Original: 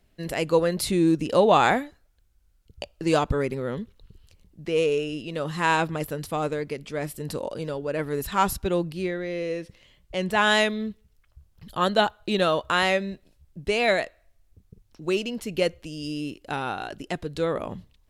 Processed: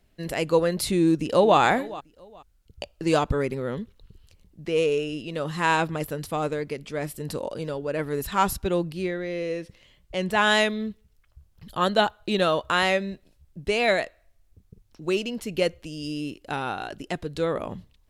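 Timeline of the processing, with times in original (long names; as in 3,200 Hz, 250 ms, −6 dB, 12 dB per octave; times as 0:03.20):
0:01.00–0:01.58: delay throw 420 ms, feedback 25%, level −18 dB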